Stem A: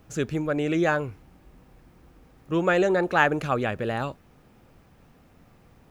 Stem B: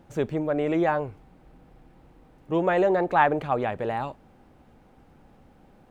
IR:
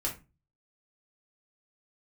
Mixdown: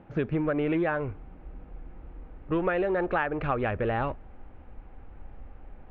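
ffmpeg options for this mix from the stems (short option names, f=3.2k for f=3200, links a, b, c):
-filter_complex "[0:a]volume=2dB[a];[1:a]alimiter=limit=-19dB:level=0:latency=1:release=280,asoftclip=type=tanh:threshold=-37dB,volume=1.5dB,asplit=2[b][c];[c]apad=whole_len=260486[d];[a][d]sidechaingate=range=-7dB:threshold=-42dB:ratio=16:detection=peak[e];[e][b]amix=inputs=2:normalize=0,lowpass=f=2.7k:w=0.5412,lowpass=f=2.7k:w=1.3066,asubboost=boost=8.5:cutoff=56,acompressor=threshold=-23dB:ratio=12"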